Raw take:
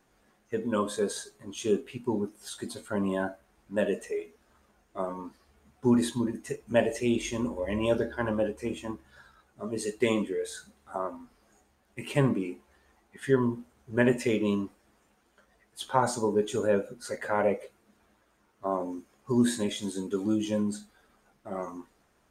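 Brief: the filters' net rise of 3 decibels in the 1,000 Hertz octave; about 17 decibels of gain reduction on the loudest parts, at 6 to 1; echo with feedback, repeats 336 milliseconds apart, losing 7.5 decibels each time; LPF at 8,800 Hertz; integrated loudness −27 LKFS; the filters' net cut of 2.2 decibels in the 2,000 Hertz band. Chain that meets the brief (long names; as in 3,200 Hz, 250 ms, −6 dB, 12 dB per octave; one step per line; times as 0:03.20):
low-pass filter 8,800 Hz
parametric band 1,000 Hz +4.5 dB
parametric band 2,000 Hz −4.5 dB
downward compressor 6 to 1, threshold −37 dBFS
repeating echo 336 ms, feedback 42%, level −7.5 dB
level +15 dB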